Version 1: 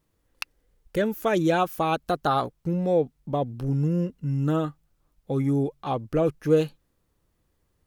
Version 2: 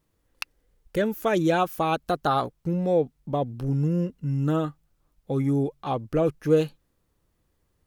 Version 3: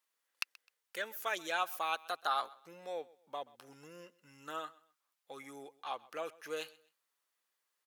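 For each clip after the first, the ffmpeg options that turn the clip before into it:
-af anull
-af "highpass=1200,aecho=1:1:129|258:0.0794|0.0238,volume=0.631"

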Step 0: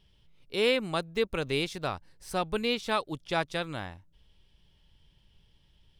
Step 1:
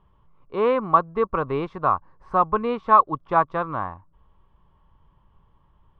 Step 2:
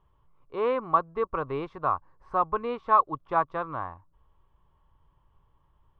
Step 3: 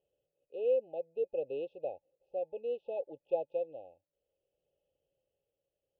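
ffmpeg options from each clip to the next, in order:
-af "lowpass=f=1100:t=q:w=9.2,volume=1.58"
-af "equalizer=f=200:t=o:w=0.43:g=-8,volume=0.531"
-filter_complex "[0:a]tremolo=f=0.62:d=0.42,afftfilt=real='re*(1-between(b*sr/4096,860,2500))':imag='im*(1-between(b*sr/4096,860,2500))':win_size=4096:overlap=0.75,asplit=3[s0][s1][s2];[s0]bandpass=f=530:t=q:w=8,volume=1[s3];[s1]bandpass=f=1840:t=q:w=8,volume=0.501[s4];[s2]bandpass=f=2480:t=q:w=8,volume=0.355[s5];[s3][s4][s5]amix=inputs=3:normalize=0,volume=1.88"

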